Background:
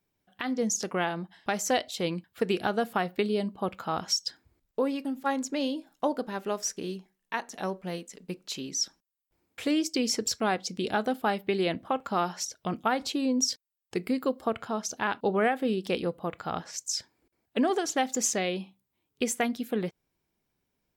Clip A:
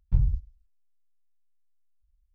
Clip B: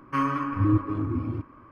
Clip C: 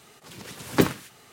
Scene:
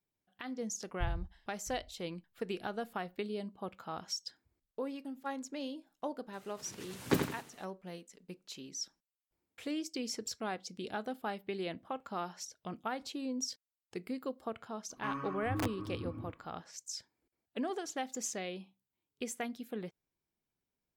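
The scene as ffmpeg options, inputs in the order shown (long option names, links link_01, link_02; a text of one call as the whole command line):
ffmpeg -i bed.wav -i cue0.wav -i cue1.wav -i cue2.wav -filter_complex "[0:a]volume=-11dB[link_01];[1:a]aecho=1:1:662:0.119[link_02];[3:a]aecho=1:1:85|170|255|340:0.473|0.151|0.0485|0.0155[link_03];[2:a]aeval=exprs='(mod(4.73*val(0)+1,2)-1)/4.73':channel_layout=same[link_04];[link_02]atrim=end=2.34,asetpts=PTS-STARTPTS,volume=-13.5dB,afade=type=in:duration=0.004:curve=hsin,afade=type=out:start_time=2.336:duration=0.004:curve=hsin,adelay=880[link_05];[link_03]atrim=end=1.32,asetpts=PTS-STARTPTS,volume=-10dB,afade=type=in:duration=0.004:curve=hsin,afade=type=out:start_time=1.316:duration=0.004:curve=hsin,adelay=6330[link_06];[link_04]atrim=end=1.71,asetpts=PTS-STARTPTS,volume=-14dB,afade=type=in:duration=0.004:curve=hsin,afade=type=out:start_time=1.706:duration=0.004:curve=hsin,adelay=14900[link_07];[link_01][link_05][link_06][link_07]amix=inputs=4:normalize=0" out.wav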